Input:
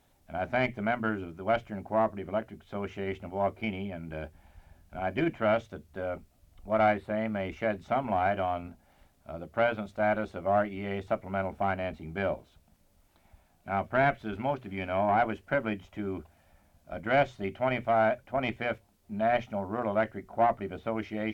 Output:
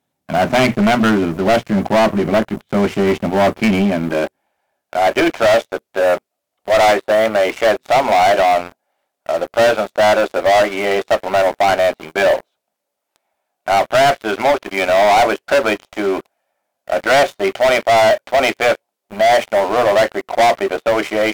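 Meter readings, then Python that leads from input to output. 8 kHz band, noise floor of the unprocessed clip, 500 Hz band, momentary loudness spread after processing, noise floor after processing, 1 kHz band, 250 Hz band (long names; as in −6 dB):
can't be measured, −66 dBFS, +16.0 dB, 8 LU, −77 dBFS, +14.5 dB, +14.5 dB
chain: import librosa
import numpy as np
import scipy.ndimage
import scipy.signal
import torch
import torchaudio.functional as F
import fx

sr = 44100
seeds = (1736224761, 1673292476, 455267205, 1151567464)

y = fx.filter_sweep_highpass(x, sr, from_hz=160.0, to_hz=510.0, start_s=3.7, end_s=4.64, q=1.3)
y = fx.leveller(y, sr, passes=5)
y = y * librosa.db_to_amplitude(3.5)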